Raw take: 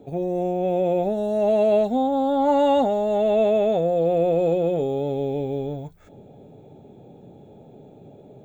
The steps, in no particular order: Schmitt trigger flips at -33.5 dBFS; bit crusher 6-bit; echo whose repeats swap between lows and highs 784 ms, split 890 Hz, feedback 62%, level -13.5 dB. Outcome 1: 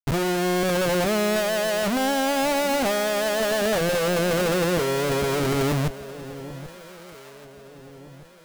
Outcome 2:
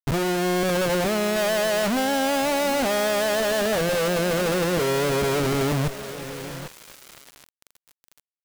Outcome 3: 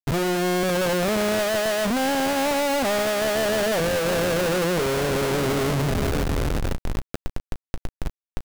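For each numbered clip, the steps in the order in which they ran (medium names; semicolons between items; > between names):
Schmitt trigger > bit crusher > echo whose repeats swap between lows and highs; Schmitt trigger > echo whose repeats swap between lows and highs > bit crusher; echo whose repeats swap between lows and highs > Schmitt trigger > bit crusher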